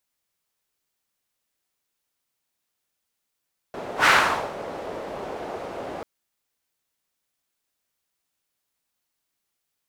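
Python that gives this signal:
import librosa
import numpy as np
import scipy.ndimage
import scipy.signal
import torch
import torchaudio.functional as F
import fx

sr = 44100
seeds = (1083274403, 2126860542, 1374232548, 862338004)

y = fx.whoosh(sr, seeds[0], length_s=2.29, peak_s=0.32, rise_s=0.11, fall_s=0.54, ends_hz=580.0, peak_hz=1600.0, q=1.6, swell_db=18)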